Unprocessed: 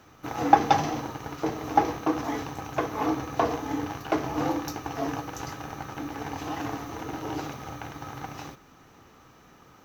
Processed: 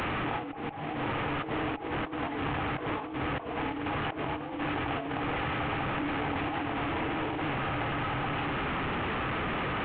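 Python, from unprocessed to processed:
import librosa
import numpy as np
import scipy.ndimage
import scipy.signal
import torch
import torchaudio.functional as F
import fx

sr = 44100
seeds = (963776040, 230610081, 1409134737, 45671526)

y = fx.delta_mod(x, sr, bps=16000, step_db=-27.5)
y = fx.over_compress(y, sr, threshold_db=-33.0, ratio=-1.0)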